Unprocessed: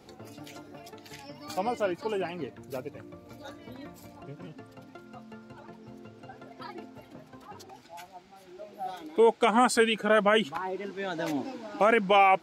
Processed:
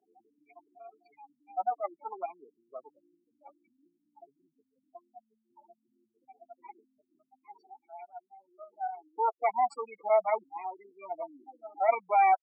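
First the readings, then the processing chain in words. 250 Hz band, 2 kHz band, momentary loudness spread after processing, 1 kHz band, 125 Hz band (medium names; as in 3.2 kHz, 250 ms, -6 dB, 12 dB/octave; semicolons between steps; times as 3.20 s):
-26.0 dB, -11.5 dB, 22 LU, -1.0 dB, under -35 dB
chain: comb filter that takes the minimum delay 0.39 ms; treble shelf 2.2 kHz -9.5 dB; comb 0.9 ms, depth 57%; spectral gate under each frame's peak -10 dB strong; ladder high-pass 640 Hz, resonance 75%; trim +8 dB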